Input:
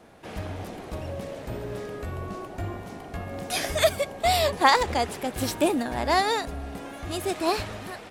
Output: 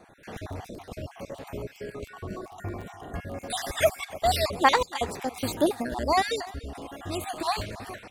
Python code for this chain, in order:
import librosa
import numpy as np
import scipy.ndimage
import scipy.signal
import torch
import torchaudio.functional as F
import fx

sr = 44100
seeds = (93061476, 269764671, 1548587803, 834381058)

y = fx.spec_dropout(x, sr, seeds[0], share_pct=44)
y = y + 10.0 ** (-20.5 / 20.0) * np.pad(y, (int(294 * sr / 1000.0), 0))[:len(y)]
y = fx.dmg_crackle(y, sr, seeds[1], per_s=11.0, level_db=-36.0)